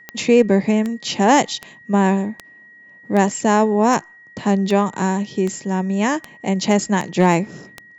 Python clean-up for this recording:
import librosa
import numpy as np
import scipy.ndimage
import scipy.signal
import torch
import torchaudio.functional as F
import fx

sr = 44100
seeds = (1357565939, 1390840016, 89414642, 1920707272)

y = fx.fix_declip(x, sr, threshold_db=-4.5)
y = fx.fix_declick_ar(y, sr, threshold=10.0)
y = fx.notch(y, sr, hz=1900.0, q=30.0)